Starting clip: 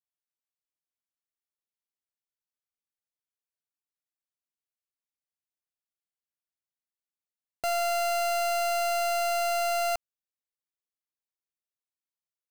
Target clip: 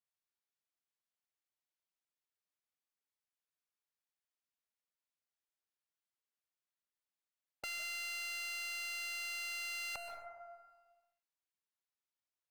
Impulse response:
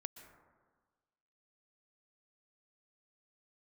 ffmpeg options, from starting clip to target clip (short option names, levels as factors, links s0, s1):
-filter_complex "[1:a]atrim=start_sample=2205[s0];[0:a][s0]afir=irnorm=-1:irlink=0,volume=53.1,asoftclip=hard,volume=0.0188,afftfilt=real='re*lt(hypot(re,im),0.0631)':imag='im*lt(hypot(re,im),0.0631)':win_size=1024:overlap=0.75,asplit=2[s1][s2];[s2]highpass=f=720:p=1,volume=2,asoftclip=type=tanh:threshold=0.0237[s3];[s1][s3]amix=inputs=2:normalize=0,lowpass=f=4500:p=1,volume=0.501,volume=1.19"